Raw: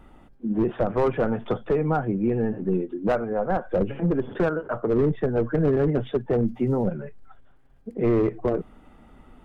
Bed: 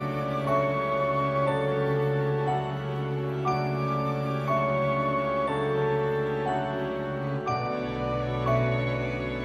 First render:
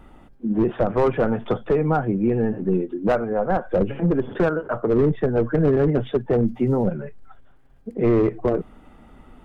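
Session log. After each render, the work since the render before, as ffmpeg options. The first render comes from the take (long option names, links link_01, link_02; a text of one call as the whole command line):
ffmpeg -i in.wav -af "volume=3dB" out.wav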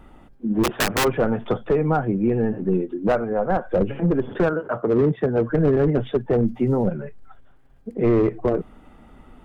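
ffmpeg -i in.wav -filter_complex "[0:a]asplit=3[link_01][link_02][link_03];[link_01]afade=type=out:start_time=0.63:duration=0.02[link_04];[link_02]aeval=exprs='(mod(5.62*val(0)+1,2)-1)/5.62':channel_layout=same,afade=type=in:start_time=0.63:duration=0.02,afade=type=out:start_time=1.03:duration=0.02[link_05];[link_03]afade=type=in:start_time=1.03:duration=0.02[link_06];[link_04][link_05][link_06]amix=inputs=3:normalize=0,asettb=1/sr,asplit=3[link_07][link_08][link_09];[link_07]atrim=end=4.534[link_10];[link_08]atrim=start=4.53:end=5.5,asetpts=PTS-STARTPTS,afade=type=in:duration=0.004:curve=qsin,afade=type=out:start_time=0.966:duration=0.004:curve=qsin,highpass=84[link_11];[link_09]atrim=start=5.496[link_12];[link_10][link_11]acrossfade=duration=0.004:curve1=hsin:curve2=qsin[link_13];[link_13][link_12]acrossfade=duration=0.004:curve1=qsin:curve2=hsin" out.wav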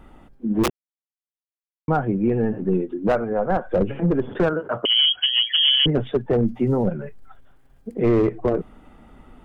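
ffmpeg -i in.wav -filter_complex "[0:a]asettb=1/sr,asplit=3[link_01][link_02][link_03];[link_01]atrim=end=4.854[link_04];[link_02]atrim=start=4.85:end=5.86,asetpts=PTS-STARTPTS,afade=type=in:duration=0.004:curve=qsin,afade=type=out:start_time=1.006:duration=0.004:curve=qsin,lowpass=frequency=2900:width_type=q:width=0.5098,lowpass=frequency=2900:width_type=q:width=0.6013,lowpass=frequency=2900:width_type=q:width=0.9,lowpass=frequency=2900:width_type=q:width=2.563,afreqshift=-3400[link_05];[link_03]atrim=start=5.856[link_06];[link_04][link_05]acrossfade=duration=0.004:curve1=hsin:curve2=qsin[link_07];[link_07][link_06]acrossfade=duration=0.004:curve1=qsin:curve2=hsin,asettb=1/sr,asplit=3[link_08][link_09][link_10];[link_08]atrim=end=7.004[link_11];[link_09]atrim=start=7:end=8.26,asetpts=PTS-STARTPTS,afade=type=in:duration=0.004:curve=qsin,afade=type=out:start_time=1.256:duration=0.004:curve=qsin,highshelf=frequency=4800:gain=7[link_12];[link_10]atrim=start=8.256[link_13];[link_11][link_12]acrossfade=duration=0.004:curve1=hsin:curve2=qsin[link_14];[link_14][link_13]acrossfade=duration=0.004:curve1=qsin:curve2=hsin,asplit=3[link_15][link_16][link_17];[link_15]atrim=end=0.7,asetpts=PTS-STARTPTS,afade=type=out:start_time=0.696:duration=0.004:curve=hsin[link_18];[link_16]atrim=start=0.7:end=1.88,asetpts=PTS-STARTPTS,volume=0[link_19];[link_17]atrim=start=1.88,asetpts=PTS-STARTPTS,afade=type=in:duration=0.004:curve=hsin[link_20];[link_18][link_19][link_20]concat=n=3:v=0:a=1" out.wav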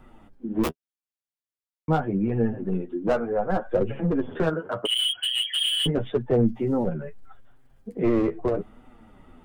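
ffmpeg -i in.wav -filter_complex "[0:a]acrossover=split=630|6300[link_01][link_02][link_03];[link_02]volume=19.5dB,asoftclip=hard,volume=-19.5dB[link_04];[link_01][link_04][link_03]amix=inputs=3:normalize=0,flanger=delay=7.7:depth=5.3:regen=15:speed=0.79:shape=triangular" out.wav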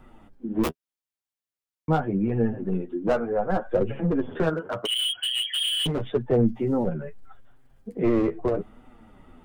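ffmpeg -i in.wav -filter_complex "[0:a]asettb=1/sr,asplit=3[link_01][link_02][link_03];[link_01]atrim=end=4.544[link_04];[link_02]atrim=start=4.54:end=6.05,asetpts=PTS-STARTPTS,afade=type=in:duration=0.004:curve=qsin,afade=type=out:start_time=1.506:duration=0.004:curve=qsin,asoftclip=type=hard:threshold=-22.5dB[link_05];[link_03]atrim=start=6.046[link_06];[link_04][link_05]acrossfade=duration=0.004:curve1=hsin:curve2=qsin[link_07];[link_07][link_06]acrossfade=duration=0.004:curve1=qsin:curve2=hsin" out.wav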